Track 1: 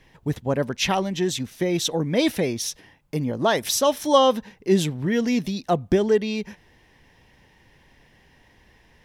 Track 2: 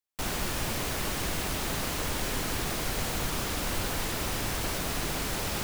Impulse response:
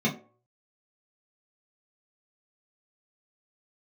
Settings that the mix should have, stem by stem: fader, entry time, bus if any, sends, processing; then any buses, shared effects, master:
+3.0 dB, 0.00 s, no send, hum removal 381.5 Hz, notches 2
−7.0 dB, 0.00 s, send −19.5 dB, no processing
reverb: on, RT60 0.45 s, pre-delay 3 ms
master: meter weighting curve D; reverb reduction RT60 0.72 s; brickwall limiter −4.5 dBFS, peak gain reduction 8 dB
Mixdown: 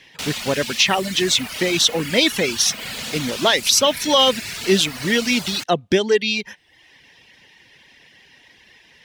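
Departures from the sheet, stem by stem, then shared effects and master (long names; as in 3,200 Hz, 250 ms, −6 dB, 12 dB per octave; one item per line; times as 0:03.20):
stem 1: missing hum removal 381.5 Hz, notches 2
stem 2 −7.0 dB → 0.0 dB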